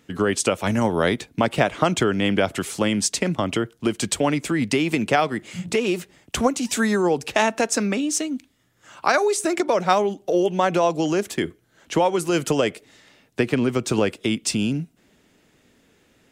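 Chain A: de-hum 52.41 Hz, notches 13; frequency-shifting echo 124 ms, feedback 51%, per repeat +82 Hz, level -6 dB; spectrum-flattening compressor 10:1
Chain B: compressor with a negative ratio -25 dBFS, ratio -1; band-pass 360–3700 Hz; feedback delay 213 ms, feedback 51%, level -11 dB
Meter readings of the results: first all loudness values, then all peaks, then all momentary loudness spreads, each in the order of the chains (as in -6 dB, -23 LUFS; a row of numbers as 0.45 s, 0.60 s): -23.0 LUFS, -30.0 LUFS; -3.5 dBFS, -10.5 dBFS; 5 LU, 6 LU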